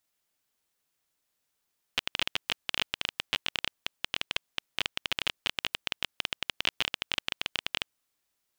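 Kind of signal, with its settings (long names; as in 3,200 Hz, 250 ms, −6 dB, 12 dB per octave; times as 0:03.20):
Geiger counter clicks 17 per second −9.5 dBFS 5.91 s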